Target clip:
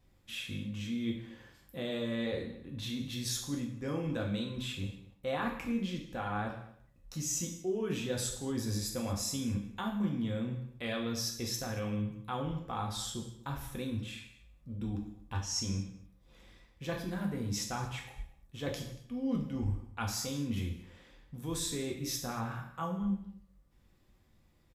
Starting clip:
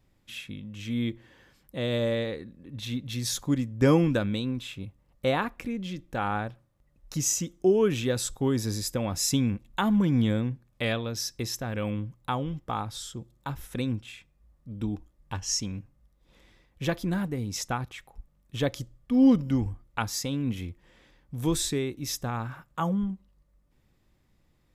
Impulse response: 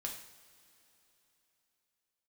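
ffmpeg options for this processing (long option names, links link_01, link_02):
-filter_complex "[0:a]areverse,acompressor=threshold=-32dB:ratio=6,areverse,asplit=2[link_01][link_02];[link_02]adelay=233.2,volume=-19dB,highshelf=frequency=4000:gain=-5.25[link_03];[link_01][link_03]amix=inputs=2:normalize=0[link_04];[1:a]atrim=start_sample=2205,afade=type=out:start_time=0.29:duration=0.01,atrim=end_sample=13230[link_05];[link_04][link_05]afir=irnorm=-1:irlink=0,volume=1dB"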